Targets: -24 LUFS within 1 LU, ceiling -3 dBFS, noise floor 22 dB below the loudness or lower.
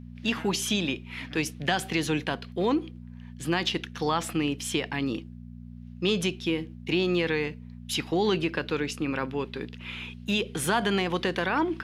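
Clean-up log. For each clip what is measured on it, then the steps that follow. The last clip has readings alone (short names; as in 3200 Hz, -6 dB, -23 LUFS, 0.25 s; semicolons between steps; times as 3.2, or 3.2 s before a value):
hum 60 Hz; harmonics up to 240 Hz; hum level -40 dBFS; loudness -28.5 LUFS; peak -9.0 dBFS; loudness target -24.0 LUFS
-> de-hum 60 Hz, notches 4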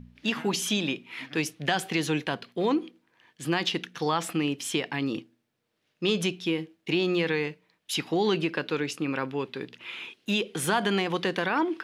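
hum none; loudness -28.5 LUFS; peak -9.0 dBFS; loudness target -24.0 LUFS
-> gain +4.5 dB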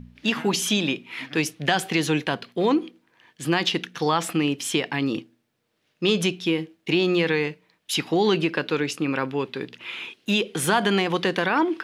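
loudness -24.0 LUFS; peak -4.5 dBFS; noise floor -71 dBFS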